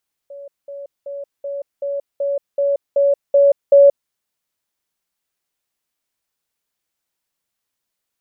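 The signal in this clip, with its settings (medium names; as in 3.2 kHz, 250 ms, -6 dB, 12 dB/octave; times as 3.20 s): level ladder 563 Hz -32 dBFS, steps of 3 dB, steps 10, 0.18 s 0.20 s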